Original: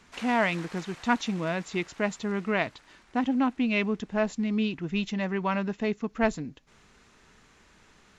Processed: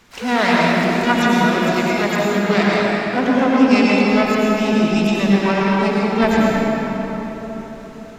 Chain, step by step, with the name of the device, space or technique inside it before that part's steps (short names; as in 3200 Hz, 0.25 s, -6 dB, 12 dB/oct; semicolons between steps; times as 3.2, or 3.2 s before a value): shimmer-style reverb (harmoniser +12 st -8 dB; reverb RT60 4.4 s, pre-delay 86 ms, DRR -5.5 dB); gain +5 dB